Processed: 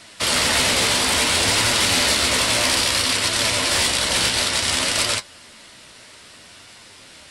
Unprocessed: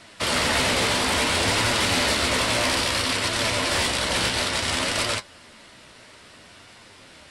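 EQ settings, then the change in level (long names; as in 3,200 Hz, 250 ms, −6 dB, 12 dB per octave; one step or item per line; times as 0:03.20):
high-shelf EQ 3,100 Hz +8.5 dB
0.0 dB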